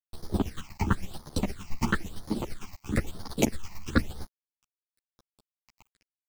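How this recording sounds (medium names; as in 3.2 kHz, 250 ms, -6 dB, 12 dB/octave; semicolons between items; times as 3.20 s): a quantiser's noise floor 8-bit, dither none; phasing stages 8, 1 Hz, lowest notch 440–2600 Hz; chopped level 8.8 Hz, depth 60%, duty 25%; a shimmering, thickened sound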